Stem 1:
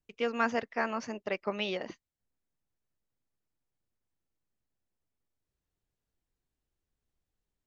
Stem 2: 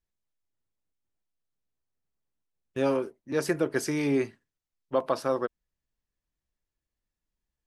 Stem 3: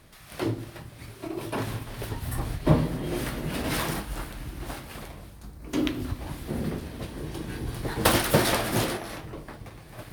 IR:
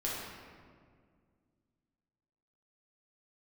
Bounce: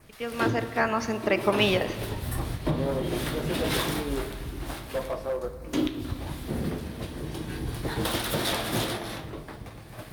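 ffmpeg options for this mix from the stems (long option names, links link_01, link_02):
-filter_complex "[0:a]dynaudnorm=framelen=160:gausssize=9:maxgain=12.5dB,volume=-3.5dB,asplit=2[link_01][link_02];[link_02]volume=-13dB[link_03];[1:a]equalizer=frequency=590:width=0.66:gain=13,flanger=delay=18.5:depth=6.5:speed=0.6,volume=12dB,asoftclip=hard,volume=-12dB,volume=-13.5dB,asplit=2[link_04][link_05];[link_05]volume=-12.5dB[link_06];[2:a]adynamicequalizer=threshold=0.00251:dfrequency=3600:dqfactor=3.7:tfrequency=3600:tqfactor=3.7:attack=5:release=100:ratio=0.375:range=3.5:mode=boostabove:tftype=bell,alimiter=limit=-16dB:level=0:latency=1:release=277,volume=-1dB,asplit=2[link_07][link_08];[link_08]volume=-14.5dB[link_09];[3:a]atrim=start_sample=2205[link_10];[link_03][link_06][link_09]amix=inputs=3:normalize=0[link_11];[link_11][link_10]afir=irnorm=-1:irlink=0[link_12];[link_01][link_04][link_07][link_12]amix=inputs=4:normalize=0"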